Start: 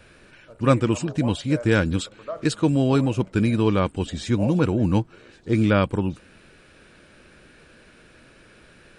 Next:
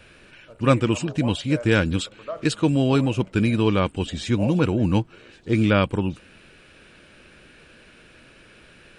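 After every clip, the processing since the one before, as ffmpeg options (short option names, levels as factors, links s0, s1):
-af "equalizer=f=2800:w=2:g=5.5"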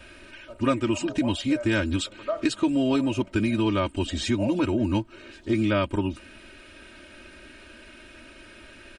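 -af "aecho=1:1:3.2:0.98,acompressor=threshold=0.0708:ratio=2.5"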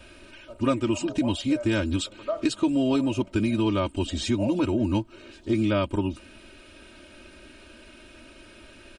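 -af "equalizer=f=1800:w=1.8:g=-6"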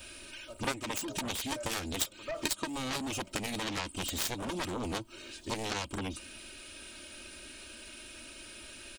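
-af "crystalizer=i=5:c=0,aeval=exprs='0.531*(cos(1*acos(clip(val(0)/0.531,-1,1)))-cos(1*PI/2))+0.133*(cos(7*acos(clip(val(0)/0.531,-1,1)))-cos(7*PI/2))':c=same,acompressor=threshold=0.0282:ratio=2,volume=0.75"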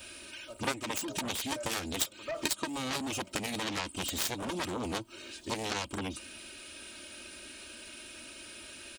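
-af "highpass=f=91:p=1,volume=1.12"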